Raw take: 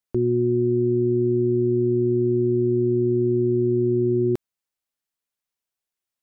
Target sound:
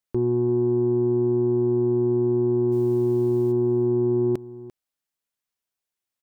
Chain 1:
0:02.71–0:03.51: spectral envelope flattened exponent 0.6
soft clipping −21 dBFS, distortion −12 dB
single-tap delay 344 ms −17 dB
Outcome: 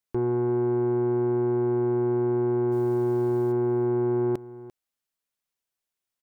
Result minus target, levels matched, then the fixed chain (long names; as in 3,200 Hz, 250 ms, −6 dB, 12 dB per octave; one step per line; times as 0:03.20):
soft clipping: distortion +10 dB
0:02.71–0:03.51: spectral envelope flattened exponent 0.6
soft clipping −14 dBFS, distortion −22 dB
single-tap delay 344 ms −17 dB